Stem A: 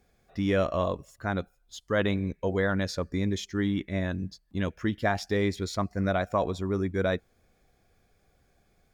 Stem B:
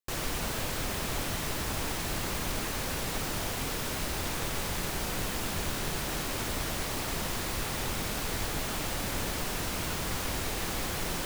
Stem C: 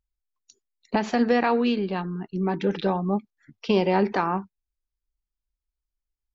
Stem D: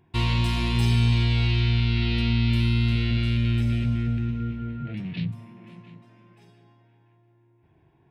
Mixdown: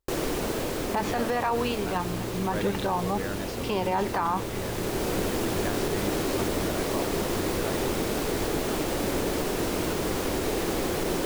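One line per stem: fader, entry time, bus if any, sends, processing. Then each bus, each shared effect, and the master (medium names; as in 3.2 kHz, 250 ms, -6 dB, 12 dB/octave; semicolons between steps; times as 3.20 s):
-8.5 dB, 0.60 s, no send, none
+0.5 dB, 0.00 s, no send, peaking EQ 380 Hz +13.5 dB 1.6 oct; auto duck -6 dB, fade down 1.95 s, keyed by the third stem
-1.5 dB, 0.00 s, no send, graphic EQ 125/250/1000 Hz +4/-9/+8 dB
-18.5 dB, 1.25 s, no send, none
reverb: none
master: peak limiter -17 dBFS, peak gain reduction 9.5 dB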